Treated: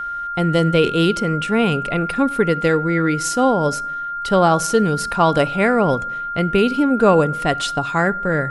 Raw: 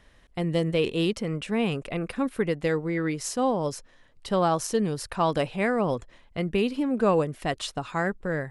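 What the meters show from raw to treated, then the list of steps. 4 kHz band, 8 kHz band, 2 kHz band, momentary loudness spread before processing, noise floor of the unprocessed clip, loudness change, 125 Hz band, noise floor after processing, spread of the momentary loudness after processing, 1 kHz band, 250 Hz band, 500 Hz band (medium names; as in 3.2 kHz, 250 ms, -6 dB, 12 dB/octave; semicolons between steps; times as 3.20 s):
+8.5 dB, +8.5 dB, +11.0 dB, 8 LU, -57 dBFS, +9.0 dB, +9.0 dB, -26 dBFS, 6 LU, +11.5 dB, +8.5 dB, +8.5 dB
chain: simulated room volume 2100 m³, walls furnished, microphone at 0.32 m; whistle 1.4 kHz -32 dBFS; trim +8.5 dB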